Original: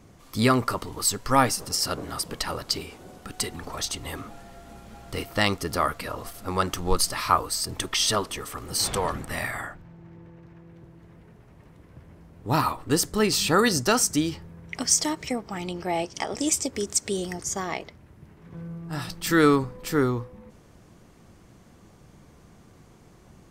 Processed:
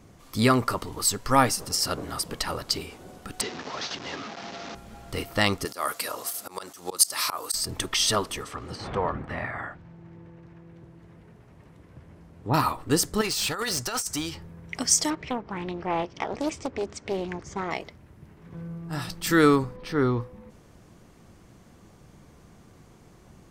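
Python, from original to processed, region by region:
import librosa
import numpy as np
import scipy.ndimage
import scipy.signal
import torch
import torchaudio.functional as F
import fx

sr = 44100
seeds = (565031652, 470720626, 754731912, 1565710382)

y = fx.chain(x, sr, fx.delta_mod(bps=32000, step_db=-30.5),
    fx.highpass(hz=190.0, slope=12), at=(3.41, 4.75))
y = fx.chain(y, sr, fx.bass_treble(bass_db=-13, treble_db=12),
    fx.auto_swell(attack_ms=182.0),
    fx.highpass(hz=120.0, slope=12), at=(5.65, 7.54))
y = fx.chain(y, sr, fx.env_lowpass_down(base_hz=1800.0, full_db=-27.5),
    fx.highpass(hz=48.0, slope=12), at=(8.41, 12.54))
y = fx.chain(y, sr, fx.peak_eq(hz=230.0, db=-11.0, octaves=2.3),
    fx.over_compress(threshold_db=-26.0, ratio=-0.5),
    fx.clip_hard(threshold_db=-23.5), at=(13.21, 14.35))
y = fx.chain(y, sr, fx.lowpass(hz=2700.0, slope=12),
    fx.doppler_dist(depth_ms=0.5), at=(15.1, 17.71))
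y = fx.chain(y, sr, fx.savgol(points=15),
    fx.transient(attack_db=-4, sustain_db=4), at=(19.76, 20.21))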